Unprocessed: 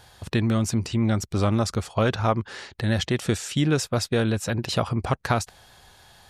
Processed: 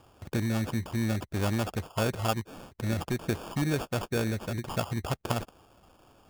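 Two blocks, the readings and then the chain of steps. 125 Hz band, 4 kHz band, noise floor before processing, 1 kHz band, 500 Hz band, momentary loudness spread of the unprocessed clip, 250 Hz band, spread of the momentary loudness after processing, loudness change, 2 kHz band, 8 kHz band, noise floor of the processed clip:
-6.5 dB, -8.0 dB, -54 dBFS, -6.5 dB, -7.0 dB, 4 LU, -6.5 dB, 5 LU, -6.5 dB, -5.5 dB, -8.5 dB, -63 dBFS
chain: sample-and-hold 22×; gain -6.5 dB

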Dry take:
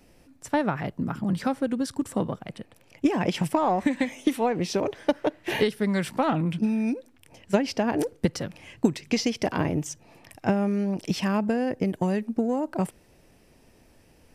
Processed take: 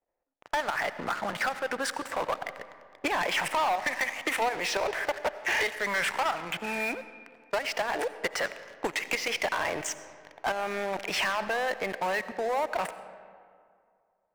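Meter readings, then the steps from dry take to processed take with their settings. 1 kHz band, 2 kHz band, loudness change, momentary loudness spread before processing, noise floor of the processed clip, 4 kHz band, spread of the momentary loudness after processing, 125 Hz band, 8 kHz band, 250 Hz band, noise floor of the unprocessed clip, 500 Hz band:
+1.0 dB, +7.0 dB, -3.0 dB, 6 LU, -73 dBFS, +2.5 dB, 8 LU, -19.0 dB, +1.5 dB, -17.0 dB, -58 dBFS, -4.0 dB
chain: low-pass opened by the level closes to 590 Hz, open at -23 dBFS; graphic EQ 125/250/2000/8000 Hz -6/-5/+6/+7 dB; level quantiser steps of 12 dB; three-band isolator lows -23 dB, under 570 Hz, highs -16 dB, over 2600 Hz; compressor 6:1, threshold -37 dBFS, peak gain reduction 13 dB; sample leveller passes 5; digital reverb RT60 2.2 s, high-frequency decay 0.55×, pre-delay 45 ms, DRR 13 dB

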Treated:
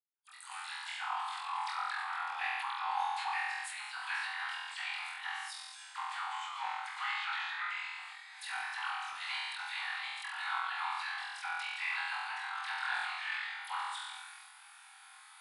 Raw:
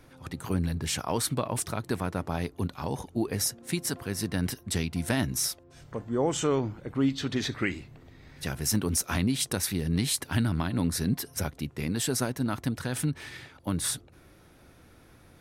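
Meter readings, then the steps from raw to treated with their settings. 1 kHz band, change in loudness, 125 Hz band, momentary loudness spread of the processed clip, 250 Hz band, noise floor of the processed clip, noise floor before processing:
+2.0 dB, -8.0 dB, under -40 dB, 10 LU, under -40 dB, -56 dBFS, -56 dBFS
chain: opening faded in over 1.54 s; in parallel at -11 dB: bit-crush 5-bit; on the sum: brick-wall FIR band-pass 740–11000 Hz; negative-ratio compressor -38 dBFS, ratio -0.5; expander -56 dBFS; high shelf 4000 Hz +7 dB; treble ducked by the level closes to 2500 Hz, closed at -33 dBFS; bell 5800 Hz -11.5 dB 0.42 oct; dispersion lows, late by 44 ms, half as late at 1700 Hz; on a send: flutter echo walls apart 4 m, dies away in 0.88 s; on the sum: sustainer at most 27 dB/s; gain -4 dB

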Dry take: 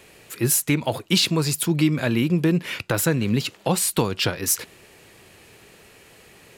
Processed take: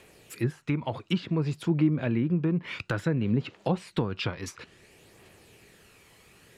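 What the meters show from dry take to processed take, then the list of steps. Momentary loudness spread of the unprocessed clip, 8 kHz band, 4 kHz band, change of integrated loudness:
5 LU, -25.0 dB, -15.0 dB, -7.0 dB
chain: treble ducked by the level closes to 1400 Hz, closed at -16.5 dBFS; phaser 0.57 Hz, delay 1 ms, feedback 33%; gain -7 dB

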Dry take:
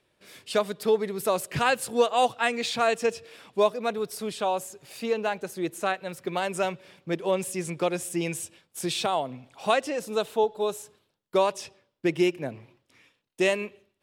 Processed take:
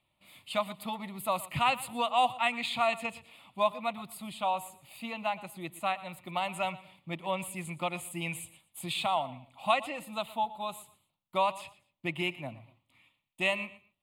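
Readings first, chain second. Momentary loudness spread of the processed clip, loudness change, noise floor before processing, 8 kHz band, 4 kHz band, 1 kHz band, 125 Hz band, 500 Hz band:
14 LU, -5.0 dB, -75 dBFS, -8.5 dB, -3.0 dB, -1.5 dB, -4.5 dB, -10.0 dB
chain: fixed phaser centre 1600 Hz, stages 6; dynamic EQ 1700 Hz, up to +5 dB, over -43 dBFS, Q 0.74; feedback echo 0.118 s, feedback 26%, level -18 dB; gain -3 dB

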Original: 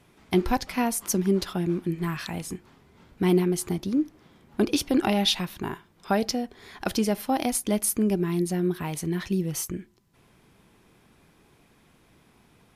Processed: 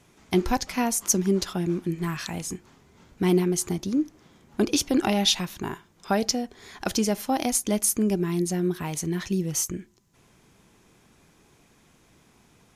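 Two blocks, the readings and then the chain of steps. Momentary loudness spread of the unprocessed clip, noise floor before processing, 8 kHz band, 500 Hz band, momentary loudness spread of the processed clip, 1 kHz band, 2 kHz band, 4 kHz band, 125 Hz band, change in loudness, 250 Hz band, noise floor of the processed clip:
11 LU, -61 dBFS, +5.0 dB, 0.0 dB, 12 LU, 0.0 dB, 0.0 dB, +2.0 dB, 0.0 dB, +1.0 dB, 0.0 dB, -60 dBFS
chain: bell 6600 Hz +9 dB 0.6 oct

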